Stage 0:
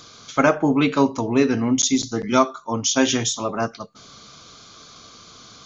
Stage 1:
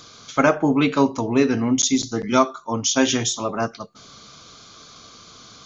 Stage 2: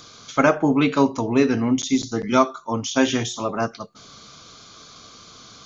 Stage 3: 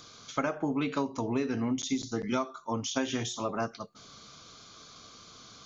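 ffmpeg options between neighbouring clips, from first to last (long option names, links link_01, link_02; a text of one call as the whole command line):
ffmpeg -i in.wav -af "bandreject=frequency=362:width_type=h:width=4,bandreject=frequency=724:width_type=h:width=4" out.wav
ffmpeg -i in.wav -filter_complex "[0:a]acrossover=split=3100[link_01][link_02];[link_02]acompressor=threshold=-29dB:ratio=4:attack=1:release=60[link_03];[link_01][link_03]amix=inputs=2:normalize=0" out.wav
ffmpeg -i in.wav -af "acompressor=threshold=-19dB:ratio=12,volume=-6.5dB" out.wav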